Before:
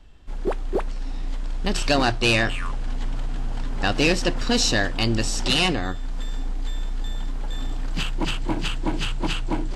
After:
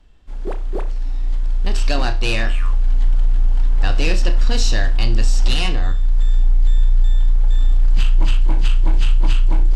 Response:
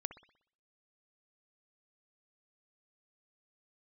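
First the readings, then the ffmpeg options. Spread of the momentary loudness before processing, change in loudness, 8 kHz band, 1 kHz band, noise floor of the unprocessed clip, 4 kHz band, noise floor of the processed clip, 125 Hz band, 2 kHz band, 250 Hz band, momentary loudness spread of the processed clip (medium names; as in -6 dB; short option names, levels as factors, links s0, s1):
13 LU, +4.5 dB, -3.0 dB, -3.0 dB, -28 dBFS, -2.5 dB, -21 dBFS, +8.0 dB, -2.5 dB, -5.0 dB, 8 LU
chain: -filter_complex "[0:a]asubboost=boost=6:cutoff=82[s0];[1:a]atrim=start_sample=2205,asetrate=83790,aresample=44100[s1];[s0][s1]afir=irnorm=-1:irlink=0,volume=1.78"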